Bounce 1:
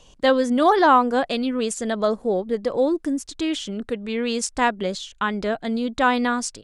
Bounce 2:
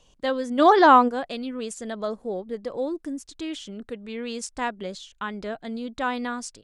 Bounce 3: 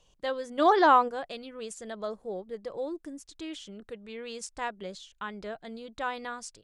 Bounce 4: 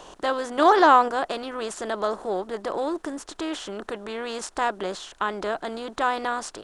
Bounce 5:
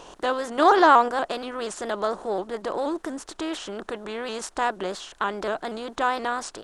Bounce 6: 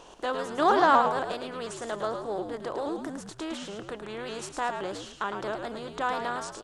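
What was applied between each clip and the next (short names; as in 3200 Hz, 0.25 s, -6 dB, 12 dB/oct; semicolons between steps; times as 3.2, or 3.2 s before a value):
spectral gain 0.59–1.08, 210–7800 Hz +9 dB; gain -8 dB
bell 250 Hz -11 dB 0.25 oct; gain -5.5 dB
per-bin compression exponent 0.6; gain +3 dB
shaped vibrato saw up 4.2 Hz, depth 100 cents
frequency-shifting echo 0.108 s, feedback 34%, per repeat -74 Hz, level -6.5 dB; gain -5.5 dB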